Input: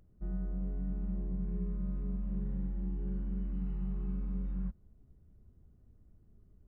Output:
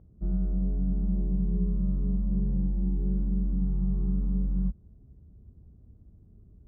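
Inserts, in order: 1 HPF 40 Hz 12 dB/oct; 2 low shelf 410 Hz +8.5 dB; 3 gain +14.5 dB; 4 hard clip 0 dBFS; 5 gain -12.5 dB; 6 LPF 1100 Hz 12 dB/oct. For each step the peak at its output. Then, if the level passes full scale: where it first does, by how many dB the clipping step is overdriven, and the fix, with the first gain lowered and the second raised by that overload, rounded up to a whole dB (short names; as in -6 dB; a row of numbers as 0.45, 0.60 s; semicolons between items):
-27.0, -19.5, -5.0, -5.0, -17.5, -17.5 dBFS; no overload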